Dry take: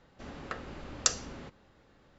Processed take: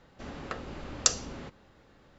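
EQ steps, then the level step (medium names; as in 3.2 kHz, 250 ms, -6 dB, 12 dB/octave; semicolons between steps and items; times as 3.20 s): dynamic bell 1.7 kHz, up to -4 dB, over -51 dBFS, Q 1.5; +3.0 dB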